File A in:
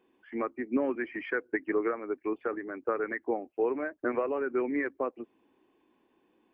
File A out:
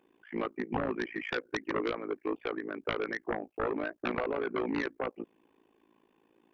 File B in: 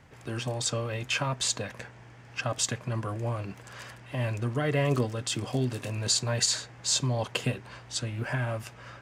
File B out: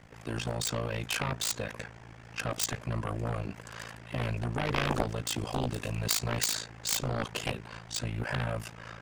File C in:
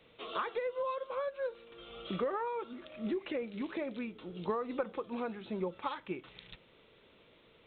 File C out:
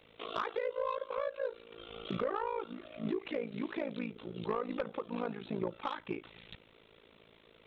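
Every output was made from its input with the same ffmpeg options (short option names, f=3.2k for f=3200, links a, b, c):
-af "tremolo=f=55:d=0.947,aeval=exprs='0.251*(cos(1*acos(clip(val(0)/0.251,-1,1)))-cos(1*PI/2))+0.1*(cos(7*acos(clip(val(0)/0.251,-1,1)))-cos(7*PI/2))':c=same"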